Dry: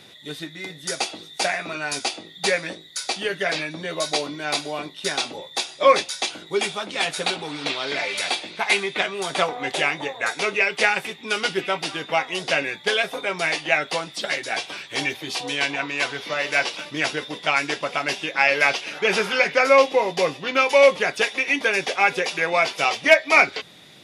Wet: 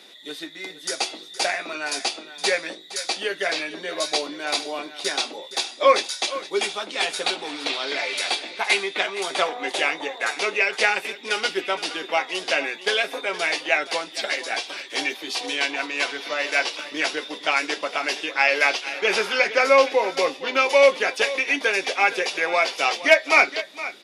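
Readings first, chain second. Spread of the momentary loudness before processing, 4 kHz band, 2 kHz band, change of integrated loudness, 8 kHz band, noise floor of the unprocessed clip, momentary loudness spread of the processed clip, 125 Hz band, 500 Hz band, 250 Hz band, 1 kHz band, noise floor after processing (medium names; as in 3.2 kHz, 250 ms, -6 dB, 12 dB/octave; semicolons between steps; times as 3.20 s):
11 LU, +0.5 dB, -0.5 dB, -0.5 dB, 0.0 dB, -45 dBFS, 10 LU, under -10 dB, -1.0 dB, -2.5 dB, -1.0 dB, -42 dBFS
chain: high-pass 250 Hz 24 dB/octave; peaking EQ 4.6 kHz +2.5 dB; delay 466 ms -15 dB; trim -1 dB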